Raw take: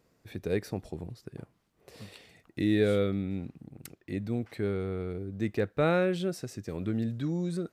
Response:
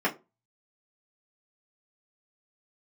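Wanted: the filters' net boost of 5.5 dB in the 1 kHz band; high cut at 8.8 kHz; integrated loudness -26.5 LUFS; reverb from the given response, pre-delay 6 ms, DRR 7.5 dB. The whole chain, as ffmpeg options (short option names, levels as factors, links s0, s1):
-filter_complex "[0:a]lowpass=8800,equalizer=f=1000:t=o:g=8.5,asplit=2[s0][s1];[1:a]atrim=start_sample=2205,adelay=6[s2];[s1][s2]afir=irnorm=-1:irlink=0,volume=0.106[s3];[s0][s3]amix=inputs=2:normalize=0,volume=1.33"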